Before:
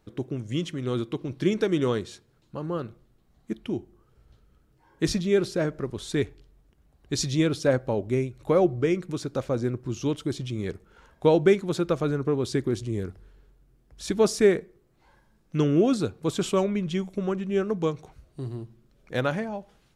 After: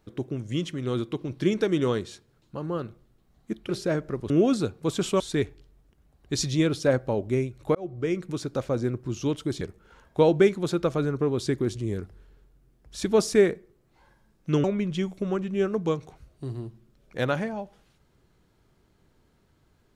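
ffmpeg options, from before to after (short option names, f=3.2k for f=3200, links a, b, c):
-filter_complex "[0:a]asplit=7[a][b][c][d][e][f][g];[a]atrim=end=3.692[h];[b]atrim=start=5.388:end=6.002[i];[c]atrim=start=15.698:end=16.602[j];[d]atrim=start=5.998:end=8.55,asetpts=PTS-STARTPTS,afade=t=out:st=2.548:d=0.004:c=hsin[k];[e]atrim=start=8.55:end=10.412,asetpts=PTS-STARTPTS,afade=t=in:d=0.68:c=qsin[l];[f]atrim=start=10.668:end=15.702[m];[g]atrim=start=16.598[n];[h][i]acrossfade=d=0.004:c1=hsin:c2=hsin[o];[o][j]acrossfade=d=0.004:c1=hsin:c2=hsin[p];[k][l]concat=n=2:v=0:a=1[q];[p][q]acrossfade=d=0.004:c1=hsin:c2=hsin[r];[r][m]acrossfade=d=0.004:c1=hsin:c2=hsin[s];[s][n]acrossfade=d=0.004:c1=hsin:c2=hsin"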